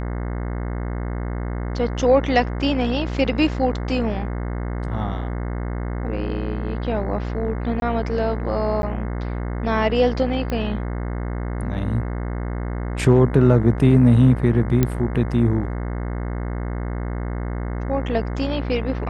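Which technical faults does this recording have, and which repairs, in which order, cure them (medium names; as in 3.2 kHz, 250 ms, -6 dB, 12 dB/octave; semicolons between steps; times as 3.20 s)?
buzz 60 Hz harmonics 36 -26 dBFS
7.80–7.82 s: dropout 21 ms
8.82–8.83 s: dropout 11 ms
10.50 s: pop -14 dBFS
14.83 s: pop -5 dBFS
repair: de-click; de-hum 60 Hz, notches 36; interpolate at 7.80 s, 21 ms; interpolate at 8.82 s, 11 ms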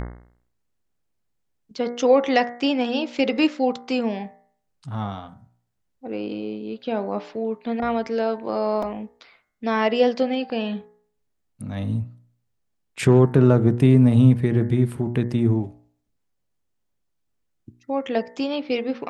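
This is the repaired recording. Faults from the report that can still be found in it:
nothing left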